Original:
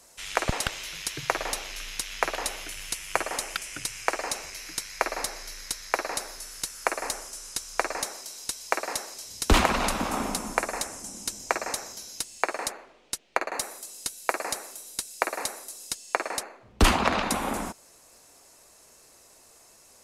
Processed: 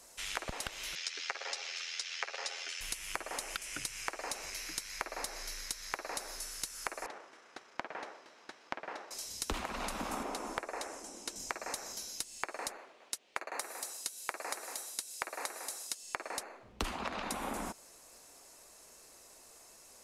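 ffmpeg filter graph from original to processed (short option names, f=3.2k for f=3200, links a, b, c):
-filter_complex "[0:a]asettb=1/sr,asplit=3[a][b][c];[a]atrim=end=0.954[d];[b]atrim=start=0.95:end=2.81,asetpts=PTS-STARTPTS,afade=t=in:d=0.004:c=qsin,afade=t=out:st=1.856:d=0.004:c=qsin,aecho=1:1:7.3:0.86,atrim=end_sample=82026,tremolo=f=84:d=0.571,highpass=f=470:w=0.5412,highpass=f=470:w=1.3066,equalizer=f=640:t=q:w=4:g=-6,equalizer=f=1k:t=q:w=4:g=-8,equalizer=f=5k:t=q:w=4:g=4,lowpass=f=6.8k:w=0.5412,lowpass=f=6.8k:w=1.3066[e];[c]atrim=start=2.806[f];[d][e]acrossfade=d=0.004:c1=hsin:c2=qsin[g];[g][f]acrossfade=d=0.004:c1=qsin:c2=hsin,asettb=1/sr,asplit=3[h][i][j];[h]atrim=end=7.064[k];[i]atrim=start=7.06:end=9.11,asetpts=PTS-STARTPTS,afade=t=in:d=0.004:c=qsin,afade=t=out:st=2.046:d=0.004:c=qsin,aeval=exprs='max(val(0),0)':c=same,highpass=270,lowpass=2.1k[l];[j]atrim=start=9.106[m];[k][l]acrossfade=d=0.004:c1=hsin:c2=qsin[n];[n][m]acrossfade=d=0.004:c1=qsin:c2=hsin,asettb=1/sr,asplit=3[o][p][q];[o]atrim=end=10.234[r];[p]atrim=start=10.23:end=11.36,asetpts=PTS-STARTPTS,afade=t=in:d=0.004:c=qsin,afade=t=out:st=1.126:d=0.004:c=qsin,lowpass=f=3k:p=1,lowshelf=f=250:t=q:w=1.5:g=-10.5,aeval=exprs='clip(val(0),-1,0.211)':c=same[s];[q]atrim=start=11.356[t];[r][s]acrossfade=d=0.004:c1=hsin:c2=qsin[u];[u][t]acrossfade=d=0.004:c1=qsin:c2=hsin,asettb=1/sr,asplit=3[v][w][x];[v]atrim=end=12.774[y];[w]atrim=start=12.77:end=16.03,asetpts=PTS-STARTPTS,afade=t=in:d=0.004:c=qsin,afade=t=out:st=3.256:d=0.004:c=qsin,highpass=f=320:p=1,aecho=1:1:232:0.299,atrim=end_sample=143766[z];[x]atrim=start=16.026[aa];[y][z]acrossfade=d=0.004:c1=hsin:c2=qsin[ab];[ab][aa]acrossfade=d=0.004:c1=qsin:c2=hsin,equalizer=f=110:w=1.1:g=-4.5,acompressor=threshold=-32dB:ratio=12,volume=-2dB"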